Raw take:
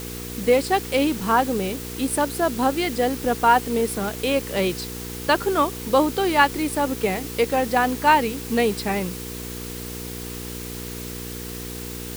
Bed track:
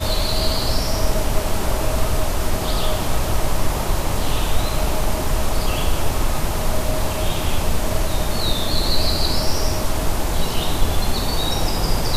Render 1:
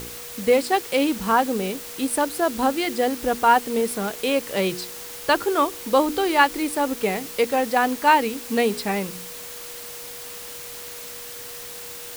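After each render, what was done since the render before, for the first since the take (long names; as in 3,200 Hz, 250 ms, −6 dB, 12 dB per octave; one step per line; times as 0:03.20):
hum removal 60 Hz, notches 7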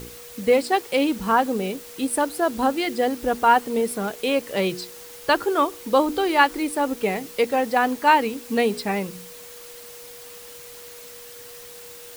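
broadband denoise 6 dB, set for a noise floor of −37 dBFS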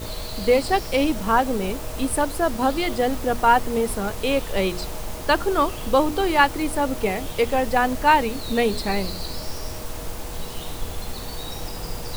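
mix in bed track −12 dB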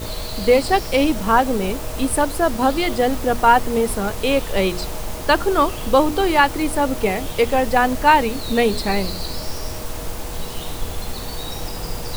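level +3.5 dB
brickwall limiter −3 dBFS, peak gain reduction 2.5 dB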